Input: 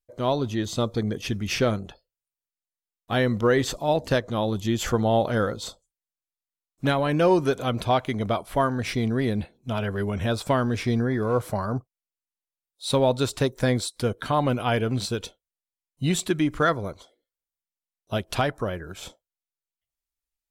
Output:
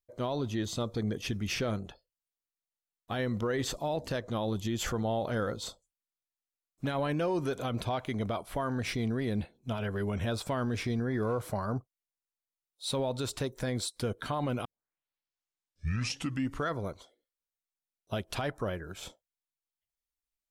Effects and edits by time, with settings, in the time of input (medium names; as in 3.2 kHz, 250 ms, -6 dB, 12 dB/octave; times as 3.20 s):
14.65 s: tape start 2.04 s
whole clip: peak limiter -19 dBFS; trim -4.5 dB